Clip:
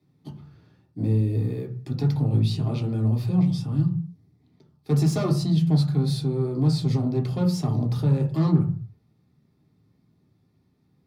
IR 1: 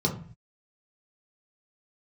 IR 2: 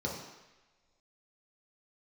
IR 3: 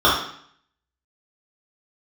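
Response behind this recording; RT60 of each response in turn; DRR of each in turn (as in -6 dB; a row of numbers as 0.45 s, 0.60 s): 1; 0.45 s, no single decay rate, 0.60 s; -1.5 dB, -3.5 dB, -8.5 dB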